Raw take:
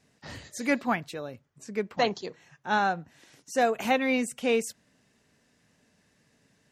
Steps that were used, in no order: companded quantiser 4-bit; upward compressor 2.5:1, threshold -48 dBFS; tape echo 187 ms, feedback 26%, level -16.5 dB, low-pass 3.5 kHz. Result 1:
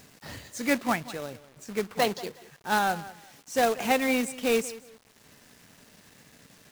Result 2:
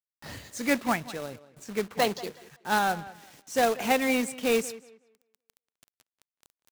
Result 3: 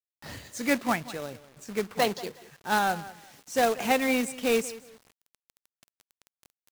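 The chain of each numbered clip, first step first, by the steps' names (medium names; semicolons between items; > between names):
upward compressor > tape echo > companded quantiser; companded quantiser > upward compressor > tape echo; tape echo > companded quantiser > upward compressor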